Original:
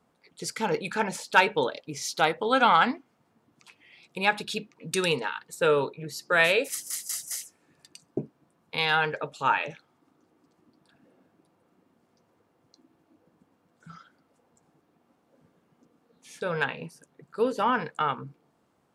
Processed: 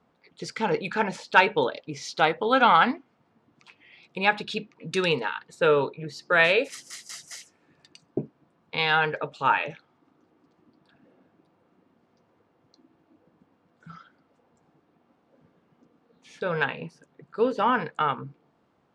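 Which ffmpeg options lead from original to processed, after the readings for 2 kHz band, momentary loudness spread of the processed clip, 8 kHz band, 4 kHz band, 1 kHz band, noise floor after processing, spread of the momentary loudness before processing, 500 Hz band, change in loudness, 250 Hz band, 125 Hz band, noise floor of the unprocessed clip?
+2.0 dB, 19 LU, -8.5 dB, +0.5 dB, +2.0 dB, -68 dBFS, 15 LU, +2.0 dB, +2.0 dB, +2.0 dB, +2.0 dB, -70 dBFS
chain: -af "lowpass=4.3k,volume=2dB"

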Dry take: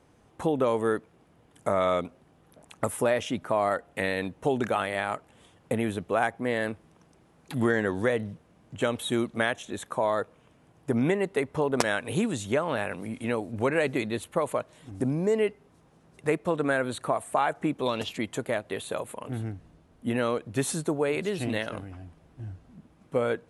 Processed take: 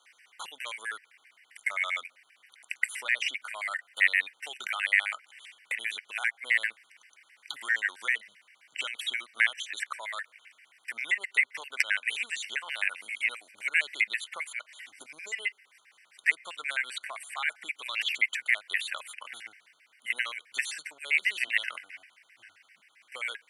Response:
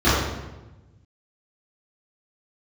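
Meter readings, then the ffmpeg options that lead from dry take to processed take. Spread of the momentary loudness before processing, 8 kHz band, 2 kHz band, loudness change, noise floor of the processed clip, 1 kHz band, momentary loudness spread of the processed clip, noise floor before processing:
10 LU, -2.5 dB, +6.5 dB, -1.0 dB, -67 dBFS, -12.0 dB, 17 LU, -61 dBFS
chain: -filter_complex "[0:a]acrossover=split=3400|7000[a][b][c];[a]acompressor=threshold=-31dB:ratio=4[d];[b]acompressor=threshold=-50dB:ratio=4[e];[c]acompressor=threshold=-57dB:ratio=4[f];[d][e][f]amix=inputs=3:normalize=0,highpass=f=2.1k:t=q:w=5.1,afftfilt=real='re*gt(sin(2*PI*7.6*pts/sr)*(1-2*mod(floor(b*sr/1024/1500),2)),0)':imag='im*gt(sin(2*PI*7.6*pts/sr)*(1-2*mod(floor(b*sr/1024/1500),2)),0)':win_size=1024:overlap=0.75,volume=8.5dB"

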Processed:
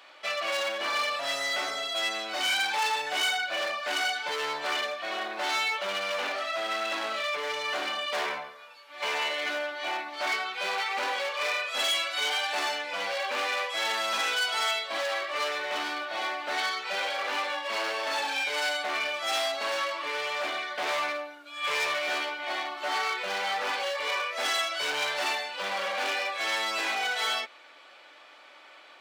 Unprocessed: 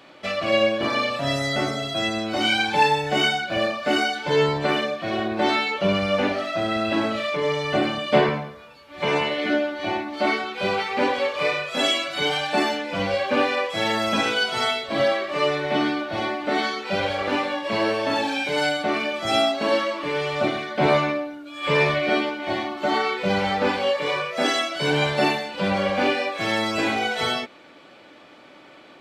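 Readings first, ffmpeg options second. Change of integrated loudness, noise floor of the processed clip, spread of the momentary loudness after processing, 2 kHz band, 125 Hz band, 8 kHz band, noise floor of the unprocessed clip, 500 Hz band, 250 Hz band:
-6.0 dB, -52 dBFS, 5 LU, -3.5 dB, under -30 dB, +1.0 dB, -48 dBFS, -11.5 dB, -22.0 dB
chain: -af "asoftclip=type=hard:threshold=-22dB,highpass=810,volume=-1dB"

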